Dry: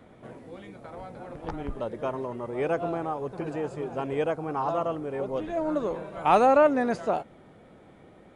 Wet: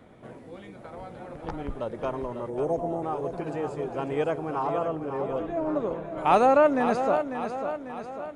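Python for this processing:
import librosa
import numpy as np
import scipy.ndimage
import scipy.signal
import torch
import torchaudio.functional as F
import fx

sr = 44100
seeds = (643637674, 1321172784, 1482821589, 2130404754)

y = fx.spec_erase(x, sr, start_s=2.49, length_s=0.53, low_hz=970.0, high_hz=5400.0)
y = fx.high_shelf(y, sr, hz=2600.0, db=-11.0, at=(4.67, 6.18))
y = fx.echo_feedback(y, sr, ms=546, feedback_pct=53, wet_db=-8.5)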